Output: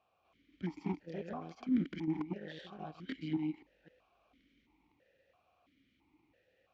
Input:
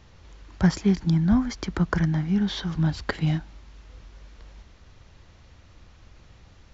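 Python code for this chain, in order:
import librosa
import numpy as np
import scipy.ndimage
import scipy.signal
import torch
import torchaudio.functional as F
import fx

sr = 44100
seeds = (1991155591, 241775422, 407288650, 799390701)

y = fx.reverse_delay(x, sr, ms=259, wet_db=0.0)
y = fx.cheby_harmonics(y, sr, harmonics=(6, 7), levels_db=(-20, -30), full_scale_db=-6.5)
y = fx.vowel_held(y, sr, hz=3.0)
y = y * librosa.db_to_amplitude(-4.0)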